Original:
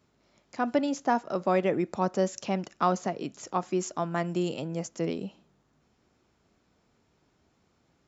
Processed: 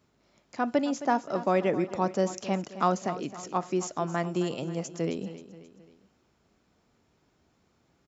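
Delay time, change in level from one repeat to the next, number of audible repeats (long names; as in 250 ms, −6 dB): 266 ms, −6.5 dB, 3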